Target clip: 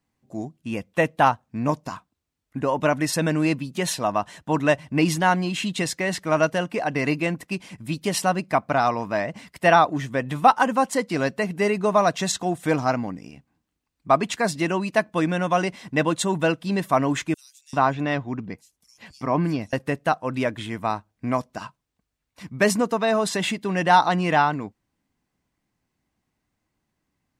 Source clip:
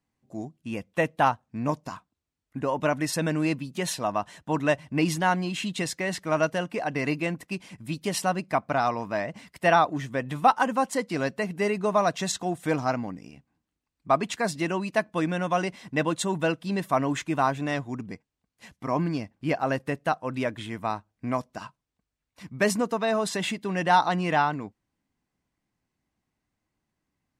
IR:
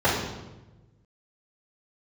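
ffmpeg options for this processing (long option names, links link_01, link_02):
-filter_complex "[0:a]asettb=1/sr,asplit=3[link_01][link_02][link_03];[link_01]atrim=end=17.344[link_04];[link_02]atrim=start=17.34:end=19.73,asetpts=PTS-STARTPTS,afade=type=in:duration=0.004:curve=qsin,afade=type=out:start_time=2.386:duration=0.004:curve=qsin,acrossover=split=5200[link_05][link_06];[link_05]adelay=390[link_07];[link_07][link_06]amix=inputs=2:normalize=0,atrim=end_sample=105399[link_08];[link_03]atrim=start=19.726[link_09];[link_04][link_08]acrossfade=duration=0.004:curve1=hsin:curve2=qsin[link_10];[link_10][link_09]acrossfade=duration=0.004:curve1=qsin:curve2=hsin,volume=4dB"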